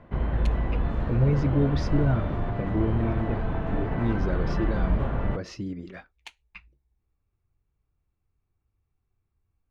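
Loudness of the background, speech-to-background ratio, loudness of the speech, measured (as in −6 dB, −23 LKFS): −29.5 LKFS, 0.5 dB, −29.0 LKFS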